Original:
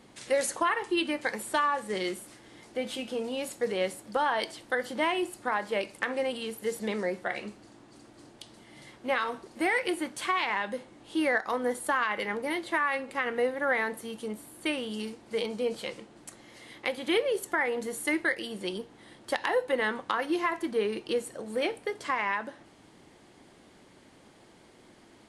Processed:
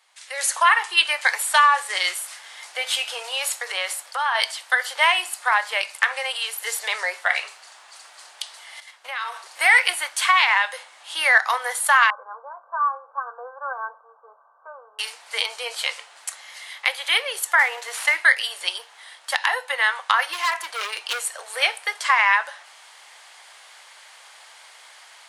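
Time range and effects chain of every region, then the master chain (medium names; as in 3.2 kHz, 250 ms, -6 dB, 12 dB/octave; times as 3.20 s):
3.37–4.35 s: compression 3:1, threshold -30 dBFS + dynamic bell 1.2 kHz, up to +4 dB, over -46 dBFS, Q 2.2
8.80–9.40 s: gate -49 dBFS, range -10 dB + compression 16:1, threshold -35 dBFS
12.10–14.99 s: rippled Chebyshev low-pass 1.6 kHz, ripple 9 dB + static phaser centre 810 Hz, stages 4
17.59–18.17 s: CVSD coder 64 kbps + low-pass 2.6 kHz 6 dB/octave + three bands compressed up and down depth 40%
20.33–21.47 s: high-pass 120 Hz + hard clipper -29.5 dBFS
whole clip: Bessel high-pass 1.2 kHz, order 6; level rider gain up to 16 dB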